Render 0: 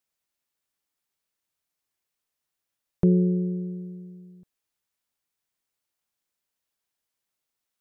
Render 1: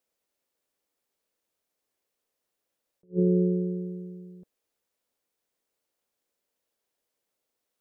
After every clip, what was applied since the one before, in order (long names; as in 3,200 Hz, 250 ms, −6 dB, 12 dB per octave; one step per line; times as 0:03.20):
octave-band graphic EQ 125/250/500 Hz −3/+4/+11 dB
brickwall limiter −14 dBFS, peak gain reduction 9 dB
level that may rise only so fast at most 370 dB per second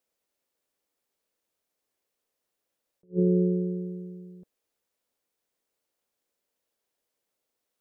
no processing that can be heard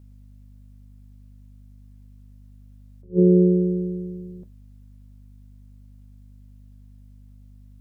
mains hum 50 Hz, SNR 20 dB
on a send at −13 dB: convolution reverb, pre-delay 3 ms
on the sum: level +6.5 dB